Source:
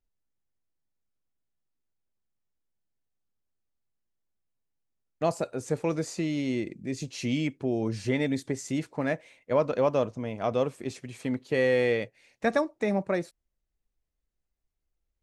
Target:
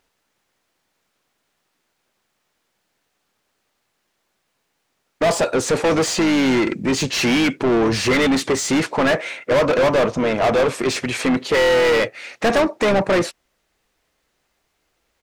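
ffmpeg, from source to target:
-filter_complex "[0:a]asplit=2[s0][s1];[s1]asetrate=29433,aresample=44100,atempo=1.49831,volume=0.251[s2];[s0][s2]amix=inputs=2:normalize=0,asplit=2[s3][s4];[s4]highpass=f=720:p=1,volume=50.1,asoftclip=type=tanh:threshold=0.376[s5];[s3][s5]amix=inputs=2:normalize=0,lowpass=f=3300:p=1,volume=0.501"

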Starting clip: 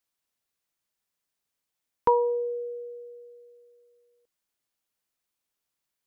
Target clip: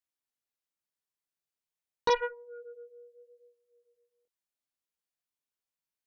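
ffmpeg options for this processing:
-af "flanger=delay=15.5:depth=7:speed=0.83,aeval=exprs='0.2*(cos(1*acos(clip(val(0)/0.2,-1,1)))-cos(1*PI/2))+0.0447*(cos(7*acos(clip(val(0)/0.2,-1,1)))-cos(7*PI/2))':c=same,volume=0.794"

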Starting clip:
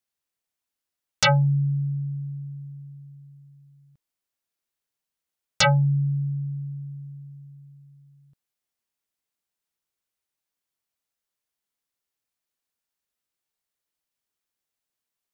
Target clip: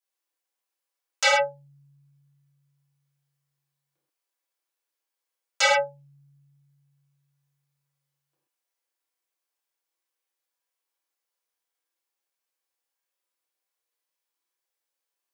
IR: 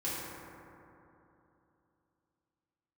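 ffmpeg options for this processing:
-filter_complex "[0:a]highpass=f=410:w=0.5412,highpass=f=410:w=1.3066[s0];[1:a]atrim=start_sample=2205,atrim=end_sample=6174[s1];[s0][s1]afir=irnorm=-1:irlink=0,volume=0.841"

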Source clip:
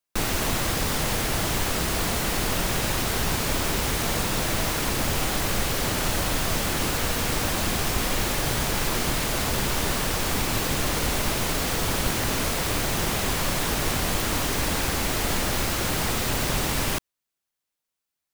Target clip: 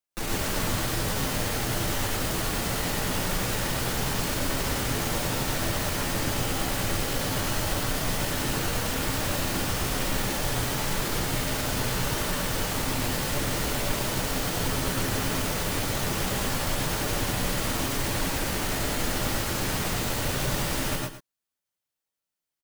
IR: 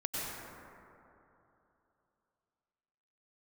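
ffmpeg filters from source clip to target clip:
-filter_complex "[0:a]atempo=0.81,aecho=1:1:111:0.266[s0];[1:a]atrim=start_sample=2205,atrim=end_sample=6174[s1];[s0][s1]afir=irnorm=-1:irlink=0,volume=0.668"

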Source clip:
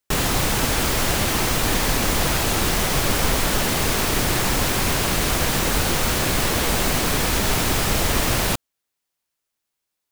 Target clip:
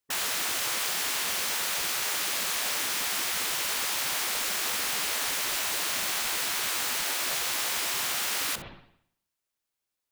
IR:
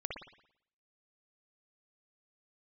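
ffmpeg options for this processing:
-filter_complex "[0:a]asplit=2[s0][s1];[1:a]atrim=start_sample=2205,adelay=64[s2];[s1][s2]afir=irnorm=-1:irlink=0,volume=0.224[s3];[s0][s3]amix=inputs=2:normalize=0,afftfilt=real='re*lt(hypot(re,im),0.141)':imag='im*lt(hypot(re,im),0.141)':win_size=1024:overlap=0.75,volume=0.562"

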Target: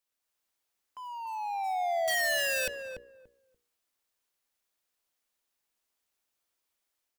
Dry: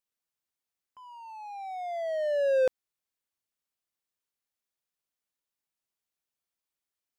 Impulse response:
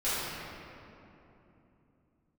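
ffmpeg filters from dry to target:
-filter_complex "[0:a]equalizer=f=140:t=o:w=0.91:g=-10.5,bandreject=f=60:t=h:w=6,bandreject=f=120:t=h:w=6,bandreject=f=180:t=h:w=6,bandreject=f=240:t=h:w=6,bandreject=f=300:t=h:w=6,bandreject=f=360:t=h:w=6,bandreject=f=420:t=h:w=6,bandreject=f=480:t=h:w=6,acrossover=split=180|3000[s0][s1][s2];[s1]acompressor=threshold=0.0141:ratio=3[s3];[s0][s3][s2]amix=inputs=3:normalize=0,asplit=2[s4][s5];[s5]acrusher=bits=3:mode=log:mix=0:aa=0.000001,volume=0.282[s6];[s4][s6]amix=inputs=2:normalize=0,dynaudnorm=f=160:g=3:m=1.58,aeval=exprs='(mod(25.1*val(0)+1,2)-1)/25.1':c=same,asplit=2[s7][s8];[s8]adelay=289,lowpass=f=840:p=1,volume=0.631,asplit=2[s9][s10];[s10]adelay=289,lowpass=f=840:p=1,volume=0.21,asplit=2[s11][s12];[s12]adelay=289,lowpass=f=840:p=1,volume=0.21[s13];[s9][s11][s13]amix=inputs=3:normalize=0[s14];[s7][s14]amix=inputs=2:normalize=0,volume=1.12"

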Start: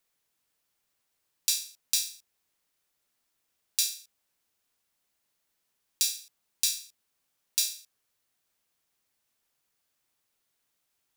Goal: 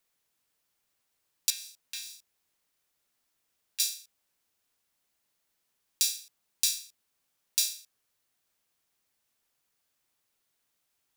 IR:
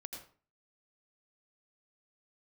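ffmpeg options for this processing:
-filter_complex "[0:a]asettb=1/sr,asplit=3[s0][s1][s2];[s0]atrim=end=1.504[s3];[s1]atrim=start=1.5:end=3.8,asetpts=PTS-STARTPTS,afade=t=in:d=0.004:c=qsin,afade=t=out:st=2.296:d=0.004:c=qsin,acrossover=split=2900[s4][s5];[s5]acompressor=threshold=0.0126:ratio=4:attack=1:release=60[s6];[s4][s6]amix=inputs=2:normalize=0[s7];[s2]atrim=start=3.796[s8];[s3][s7]acrossfade=d=0.004:c1=hsin:c2=qsin[s9];[s9][s8]acrossfade=d=0.004:c1=qsin:c2=hsin"

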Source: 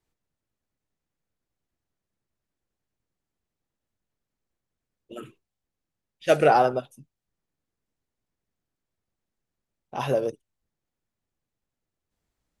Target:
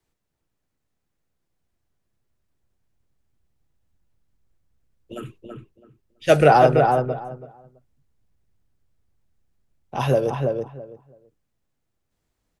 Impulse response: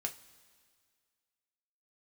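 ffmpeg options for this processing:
-filter_complex "[0:a]acrossover=split=130|680|4600[s0][s1][s2][s3];[s0]dynaudnorm=f=410:g=13:m=4.22[s4];[s4][s1][s2][s3]amix=inputs=4:normalize=0,asplit=2[s5][s6];[s6]adelay=330,lowpass=f=1600:p=1,volume=0.668,asplit=2[s7][s8];[s8]adelay=330,lowpass=f=1600:p=1,volume=0.19,asplit=2[s9][s10];[s10]adelay=330,lowpass=f=1600:p=1,volume=0.19[s11];[s5][s7][s9][s11]amix=inputs=4:normalize=0,volume=1.58"

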